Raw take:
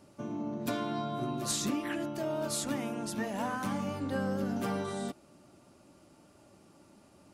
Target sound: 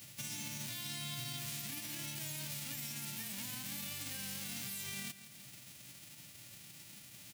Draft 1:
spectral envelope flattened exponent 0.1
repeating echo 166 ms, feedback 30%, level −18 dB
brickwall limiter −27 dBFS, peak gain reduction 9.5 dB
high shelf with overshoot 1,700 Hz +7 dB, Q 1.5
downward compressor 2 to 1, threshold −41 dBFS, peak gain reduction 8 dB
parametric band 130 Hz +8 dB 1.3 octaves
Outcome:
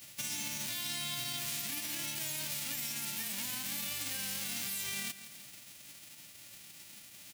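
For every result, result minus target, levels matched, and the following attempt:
125 Hz band −10.0 dB; downward compressor: peak gain reduction −5.5 dB
spectral envelope flattened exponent 0.1
repeating echo 166 ms, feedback 30%, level −18 dB
brickwall limiter −27 dBFS, peak gain reduction 9.5 dB
high shelf with overshoot 1,700 Hz +7 dB, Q 1.5
downward compressor 2 to 1, threshold −41 dBFS, peak gain reduction 8 dB
parametric band 130 Hz +18.5 dB 1.3 octaves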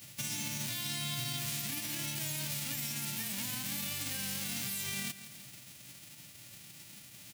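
downward compressor: peak gain reduction −5.5 dB
spectral envelope flattened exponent 0.1
repeating echo 166 ms, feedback 30%, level −18 dB
brickwall limiter −27 dBFS, peak gain reduction 9.5 dB
high shelf with overshoot 1,700 Hz +7 dB, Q 1.5
downward compressor 2 to 1, threshold −52 dBFS, peak gain reduction 13.5 dB
parametric band 130 Hz +18.5 dB 1.3 octaves

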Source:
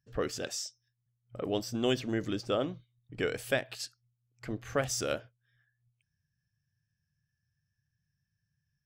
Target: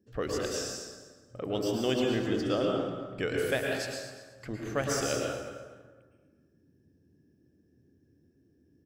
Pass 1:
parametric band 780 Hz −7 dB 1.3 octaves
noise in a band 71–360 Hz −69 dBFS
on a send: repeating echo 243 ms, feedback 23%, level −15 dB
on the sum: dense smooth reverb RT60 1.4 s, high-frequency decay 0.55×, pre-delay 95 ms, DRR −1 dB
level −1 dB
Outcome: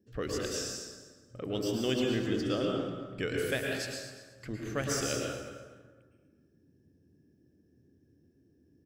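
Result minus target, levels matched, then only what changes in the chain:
1,000 Hz band −2.5 dB
remove: parametric band 780 Hz −7 dB 1.3 octaves

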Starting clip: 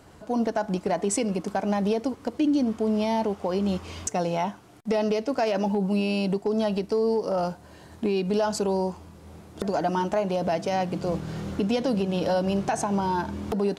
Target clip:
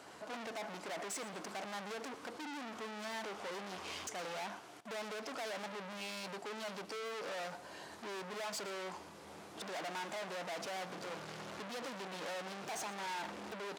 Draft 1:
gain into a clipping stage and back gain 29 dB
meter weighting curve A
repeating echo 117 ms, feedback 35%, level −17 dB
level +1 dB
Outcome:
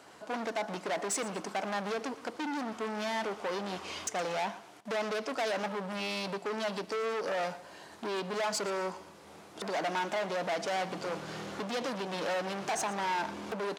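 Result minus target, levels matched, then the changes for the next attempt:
gain into a clipping stage and back: distortion −4 dB
change: gain into a clipping stage and back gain 40 dB

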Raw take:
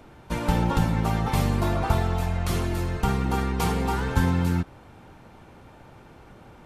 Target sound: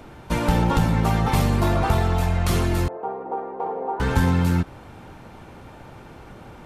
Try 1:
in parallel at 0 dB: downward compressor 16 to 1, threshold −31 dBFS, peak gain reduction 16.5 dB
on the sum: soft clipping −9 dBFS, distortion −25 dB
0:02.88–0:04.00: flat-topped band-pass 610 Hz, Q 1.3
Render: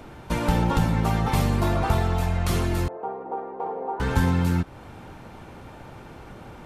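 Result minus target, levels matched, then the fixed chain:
downward compressor: peak gain reduction +10 dB
in parallel at 0 dB: downward compressor 16 to 1, threshold −20.5 dBFS, peak gain reduction 6.5 dB
on the sum: soft clipping −9 dBFS, distortion −21 dB
0:02.88–0:04.00: flat-topped band-pass 610 Hz, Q 1.3

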